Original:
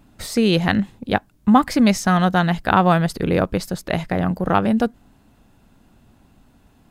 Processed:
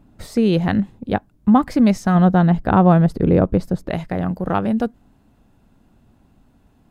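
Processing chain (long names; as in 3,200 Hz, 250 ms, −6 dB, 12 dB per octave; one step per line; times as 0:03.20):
tilt shelving filter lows +5.5 dB, about 1,200 Hz, from 0:02.14 lows +10 dB, from 0:03.89 lows +3 dB
level −4 dB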